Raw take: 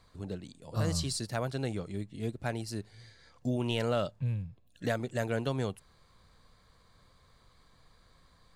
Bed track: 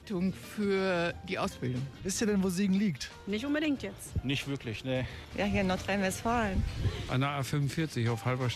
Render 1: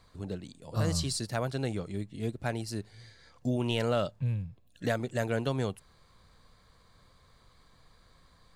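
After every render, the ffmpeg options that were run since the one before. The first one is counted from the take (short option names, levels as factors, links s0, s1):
-af "volume=1.19"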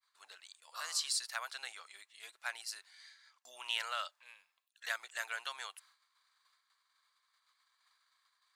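-af "agate=range=0.0224:threshold=0.00251:ratio=3:detection=peak,highpass=f=1100:w=0.5412,highpass=f=1100:w=1.3066"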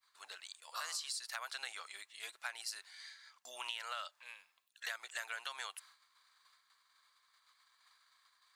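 -filter_complex "[0:a]asplit=2[s0][s1];[s1]alimiter=level_in=1.78:limit=0.0631:level=0:latency=1,volume=0.562,volume=0.75[s2];[s0][s2]amix=inputs=2:normalize=0,acompressor=threshold=0.0126:ratio=12"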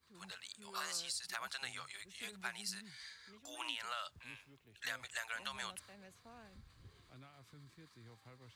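-filter_complex "[1:a]volume=0.0376[s0];[0:a][s0]amix=inputs=2:normalize=0"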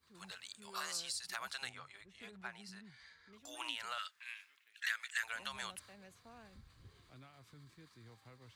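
-filter_complex "[0:a]asettb=1/sr,asplit=3[s0][s1][s2];[s0]atrim=end=1.694[s3];[s1]atrim=start=1.69:end=3.33,asetpts=PTS-STARTPTS,afade=t=in:d=0.004:c=qsin,afade=t=out:st=1.636:d=0.004:c=qsin,lowpass=f=1300:p=1[s4];[s2]atrim=start=3.326[s5];[s3][s4]acrossfade=d=0.004:c1=hsin:c2=qsin[s6];[s6][s5]acrossfade=d=0.004:c1=qsin:c2=hsin,asettb=1/sr,asplit=3[s7][s8][s9];[s7]atrim=end=3.984[s10];[s8]atrim=start=3.98:end=5.23,asetpts=PTS-STARTPTS,afade=t=in:d=0.004:c=qsin,afade=t=out:st=1.246:d=0.004:c=qsin,highpass=f=1700:t=q:w=2[s11];[s9]atrim=start=5.226[s12];[s10][s11]acrossfade=d=0.004:c1=hsin:c2=qsin[s13];[s13][s12]acrossfade=d=0.004:c1=qsin:c2=hsin"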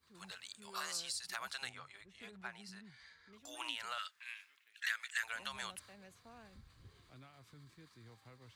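-af anull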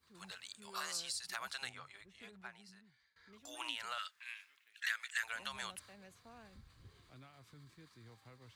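-filter_complex "[0:a]asplit=2[s0][s1];[s0]atrim=end=3.16,asetpts=PTS-STARTPTS,afade=t=out:st=2:d=1.16:silence=0.0707946[s2];[s1]atrim=start=3.16,asetpts=PTS-STARTPTS,afade=t=in:d=0.004:c=hsin:silence=0.0707946[s3];[s2][s3]concat=n=2:v=0:a=1"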